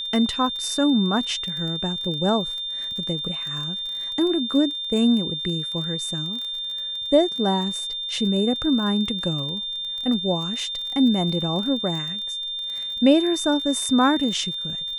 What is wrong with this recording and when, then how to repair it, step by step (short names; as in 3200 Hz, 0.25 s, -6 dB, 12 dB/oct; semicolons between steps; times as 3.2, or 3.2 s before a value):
crackle 29/s -30 dBFS
tone 3600 Hz -27 dBFS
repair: de-click; notch 3600 Hz, Q 30